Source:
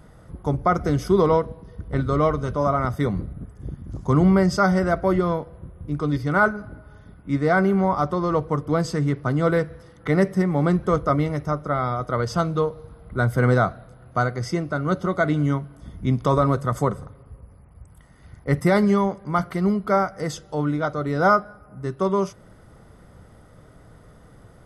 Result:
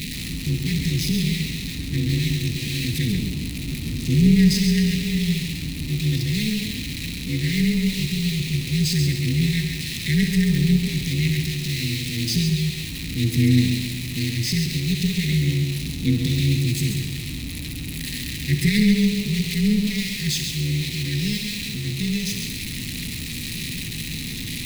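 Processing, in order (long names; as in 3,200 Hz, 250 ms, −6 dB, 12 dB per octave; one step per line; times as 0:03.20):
converter with a step at zero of −24 dBFS
harmonic and percussive parts rebalanced percussive −4 dB
linear-phase brick-wall band-stop 270–1,800 Hz
high-shelf EQ 2,300 Hz +8 dB
amplitude modulation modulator 220 Hz, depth 55%
thirty-one-band graphic EQ 160 Hz +6 dB, 250 Hz +10 dB, 400 Hz −5 dB, 2,500 Hz +8 dB, 4,000 Hz +11 dB
feedback echo with a high-pass in the loop 65 ms, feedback 62%, high-pass 730 Hz, level −10.5 dB
feedback echo at a low word length 136 ms, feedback 35%, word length 7 bits, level −6 dB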